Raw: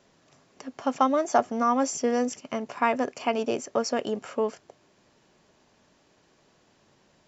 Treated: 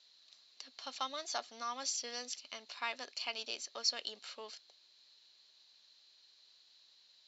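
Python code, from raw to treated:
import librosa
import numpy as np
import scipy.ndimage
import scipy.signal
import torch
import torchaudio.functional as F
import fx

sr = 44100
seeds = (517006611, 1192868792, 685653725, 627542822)

y = fx.bandpass_q(x, sr, hz=4100.0, q=10.0)
y = F.gain(torch.from_numpy(y), 15.0).numpy()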